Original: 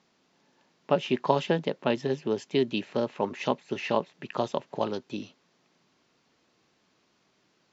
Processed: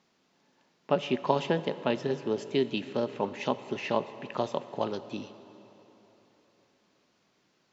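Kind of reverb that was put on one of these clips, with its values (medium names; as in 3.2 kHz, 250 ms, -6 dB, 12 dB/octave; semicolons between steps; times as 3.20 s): plate-style reverb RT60 3.7 s, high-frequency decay 0.85×, DRR 12.5 dB; trim -2 dB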